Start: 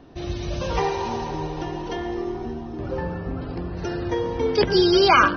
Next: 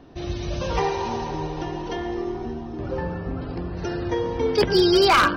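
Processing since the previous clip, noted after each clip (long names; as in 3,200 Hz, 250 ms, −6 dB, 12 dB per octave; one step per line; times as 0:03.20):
wave folding −10 dBFS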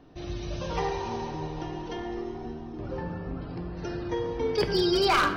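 rectangular room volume 430 cubic metres, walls mixed, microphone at 0.47 metres
level −6.5 dB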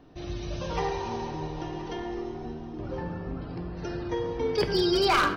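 single-tap delay 1,022 ms −18 dB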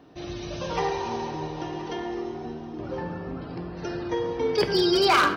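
high-pass filter 170 Hz 6 dB per octave
level +3.5 dB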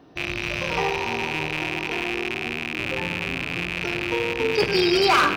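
loose part that buzzes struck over −42 dBFS, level −16 dBFS
level +1.5 dB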